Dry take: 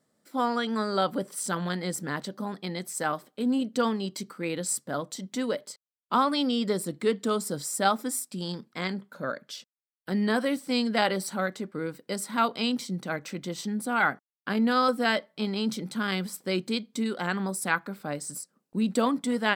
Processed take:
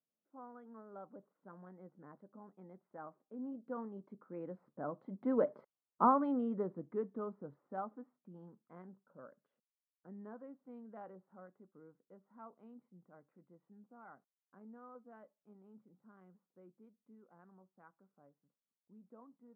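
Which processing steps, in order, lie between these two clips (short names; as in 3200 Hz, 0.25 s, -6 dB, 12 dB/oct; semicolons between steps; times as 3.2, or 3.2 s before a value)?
Doppler pass-by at 5.69, 7 m/s, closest 1.5 m; LPF 1200 Hz 24 dB/oct; low shelf 80 Hz -10.5 dB; gain +3.5 dB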